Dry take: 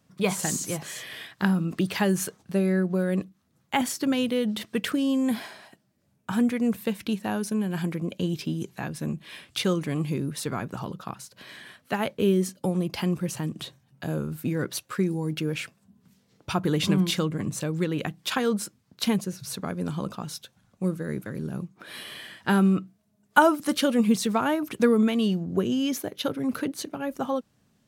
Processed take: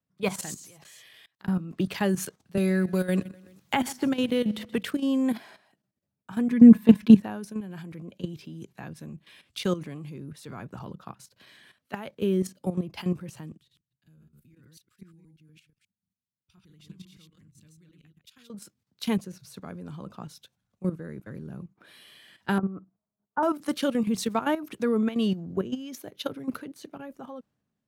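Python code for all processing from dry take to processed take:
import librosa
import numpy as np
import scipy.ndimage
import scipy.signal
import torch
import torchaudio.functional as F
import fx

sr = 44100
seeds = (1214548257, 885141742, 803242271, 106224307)

y = fx.chain(x, sr, fx.level_steps(step_db=21),
    fx.peak_eq(hz=220.0, db=-5.0, octaves=1.6),
    fx.notch(hz=1500.0, q=23.0), at=(0.54, 1.48))
y = fx.chain(y, sr, fx.low_shelf(hz=88.0, db=4.0),
    fx.echo_feedback(ms=127, feedback_pct=44, wet_db=-19.0),
    fx.band_squash(depth_pct=100), at=(2.57, 4.83))
y = fx.chain(y, sr, fx.comb(ms=4.7, depth=0.97),
    fx.small_body(hz=(230.0, 1000.0, 1700.0), ring_ms=45, db=9), at=(6.49, 7.21))
y = fx.chain(y, sr, fx.reverse_delay(ms=120, wet_db=-2),
    fx.tone_stack(knobs='6-0-2'), at=(13.57, 18.5))
y = fx.chain(y, sr, fx.cvsd(bps=64000),
    fx.lowpass(hz=1200.0, slope=24),
    fx.low_shelf(hz=460.0, db=-7.0), at=(22.58, 23.43))
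y = fx.peak_eq(y, sr, hz=9600.0, db=-4.5, octaves=2.3)
y = fx.level_steps(y, sr, step_db=12)
y = fx.band_widen(y, sr, depth_pct=40)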